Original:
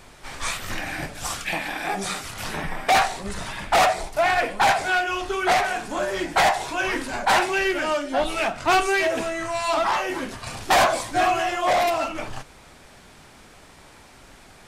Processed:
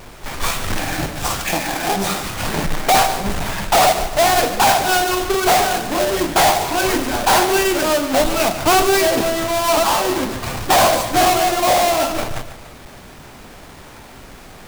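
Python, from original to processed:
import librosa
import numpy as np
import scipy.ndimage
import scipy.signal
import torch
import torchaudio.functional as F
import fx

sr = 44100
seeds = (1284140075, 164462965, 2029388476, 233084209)

p1 = fx.halfwave_hold(x, sr)
p2 = fx.dynamic_eq(p1, sr, hz=1900.0, q=1.1, threshold_db=-30.0, ratio=4.0, max_db=-5)
p3 = p2 + fx.echo_feedback(p2, sr, ms=144, feedback_pct=42, wet_db=-12.0, dry=0)
y = p3 * librosa.db_to_amplitude(4.0)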